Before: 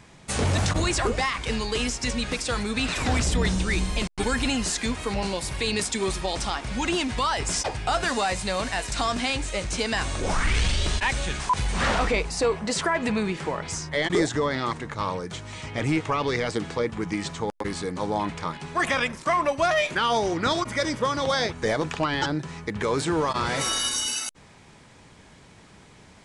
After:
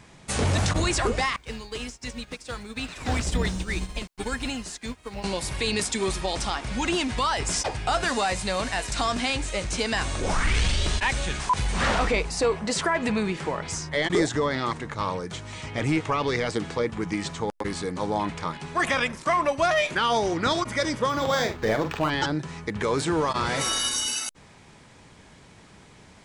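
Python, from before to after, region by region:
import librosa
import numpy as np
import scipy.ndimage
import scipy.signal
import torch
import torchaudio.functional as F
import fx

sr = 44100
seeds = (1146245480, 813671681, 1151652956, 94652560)

y = fx.chain(x, sr, fx.quant_dither(seeds[0], bits=10, dither='triangular'),
    fx.upward_expand(threshold_db=-36.0, expansion=2.5), at=(1.36, 5.24))
y = fx.chain(y, sr, fx.doubler(ms=46.0, db=-8.0),
    fx.resample_linear(factor=4), at=(21.09, 22.1))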